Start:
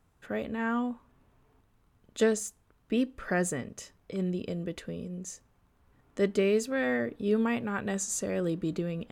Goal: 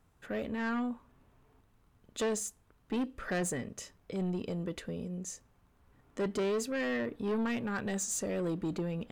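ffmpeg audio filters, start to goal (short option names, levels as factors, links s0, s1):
-af "asoftclip=type=tanh:threshold=0.0398"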